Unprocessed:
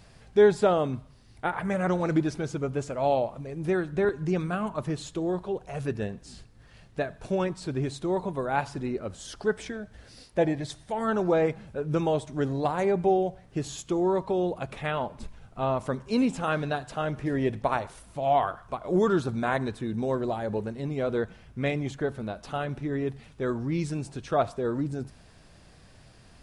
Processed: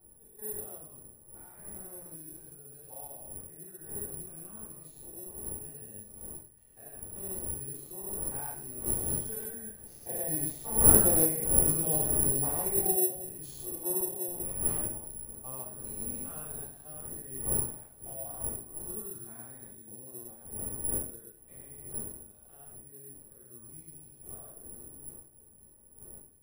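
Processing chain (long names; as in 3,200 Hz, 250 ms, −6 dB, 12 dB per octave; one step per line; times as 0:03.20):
spectrum averaged block by block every 200 ms
wind on the microphone 380 Hz −31 dBFS
source passing by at 0:11.34, 7 m/s, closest 8.3 metres
convolution reverb RT60 0.40 s, pre-delay 3 ms, DRR −8.5 dB
bad sample-rate conversion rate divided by 4×, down none, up zero stuff
level −17.5 dB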